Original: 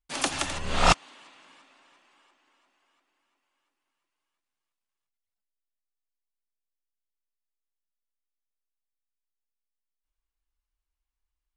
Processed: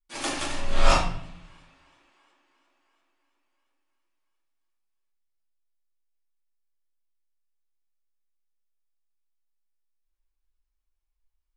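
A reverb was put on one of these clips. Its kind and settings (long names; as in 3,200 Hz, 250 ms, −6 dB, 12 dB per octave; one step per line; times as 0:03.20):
rectangular room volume 110 cubic metres, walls mixed, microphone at 2.4 metres
level −10.5 dB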